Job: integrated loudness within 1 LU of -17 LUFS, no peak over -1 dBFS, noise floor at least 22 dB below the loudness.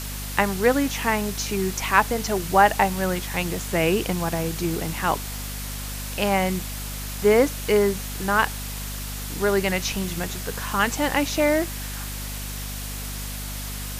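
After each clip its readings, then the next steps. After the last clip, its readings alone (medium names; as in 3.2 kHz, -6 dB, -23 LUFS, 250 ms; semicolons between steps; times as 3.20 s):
hum 50 Hz; highest harmonic 250 Hz; hum level -31 dBFS; noise floor -32 dBFS; noise floor target -46 dBFS; loudness -24.0 LUFS; peak level -2.5 dBFS; loudness target -17.0 LUFS
-> hum notches 50/100/150/200/250 Hz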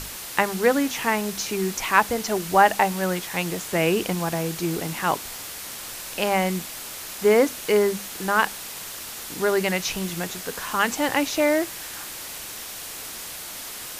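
hum not found; noise floor -36 dBFS; noise floor target -47 dBFS
-> noise reduction 11 dB, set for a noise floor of -36 dBFS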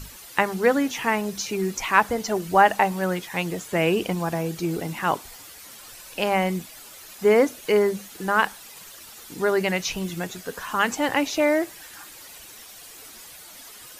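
noise floor -44 dBFS; noise floor target -46 dBFS
-> noise reduction 6 dB, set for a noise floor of -44 dBFS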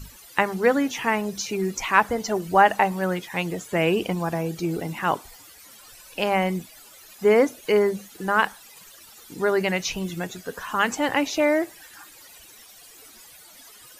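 noise floor -48 dBFS; loudness -23.5 LUFS; peak level -2.5 dBFS; loudness target -17.0 LUFS
-> trim +6.5 dB; peak limiter -1 dBFS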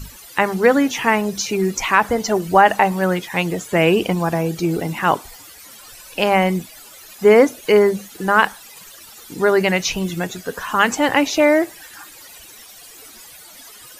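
loudness -17.5 LUFS; peak level -1.0 dBFS; noise floor -42 dBFS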